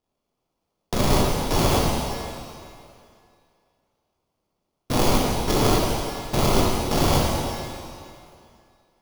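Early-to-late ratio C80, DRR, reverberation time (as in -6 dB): 1.0 dB, -3.0 dB, 2.5 s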